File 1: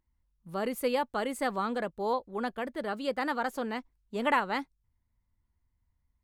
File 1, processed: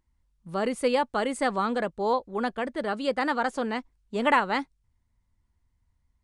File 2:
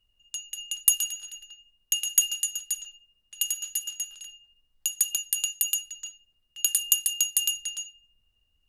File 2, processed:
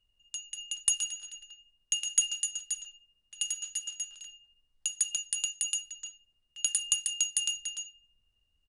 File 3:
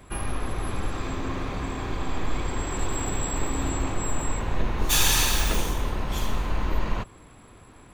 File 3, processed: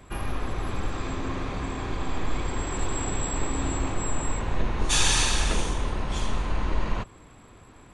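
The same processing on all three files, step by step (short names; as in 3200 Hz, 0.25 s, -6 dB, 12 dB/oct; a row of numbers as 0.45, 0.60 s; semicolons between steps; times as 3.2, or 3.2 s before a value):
downsampling 22050 Hz; normalise peaks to -9 dBFS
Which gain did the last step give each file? +4.5, -3.5, -0.5 dB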